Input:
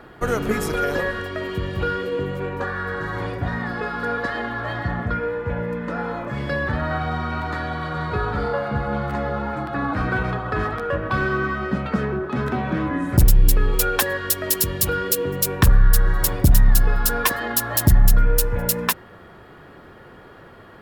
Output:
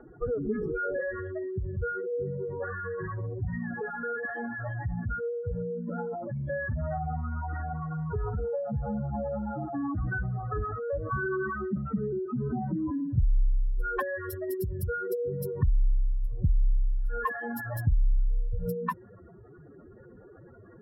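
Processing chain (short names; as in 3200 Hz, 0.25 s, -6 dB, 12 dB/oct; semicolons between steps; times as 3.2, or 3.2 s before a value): spectral contrast raised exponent 3.3; LPF 1500 Hz 6 dB/oct; compressor 1.5:1, threshold -22 dBFS, peak gain reduction 4.5 dB; gain -5.5 dB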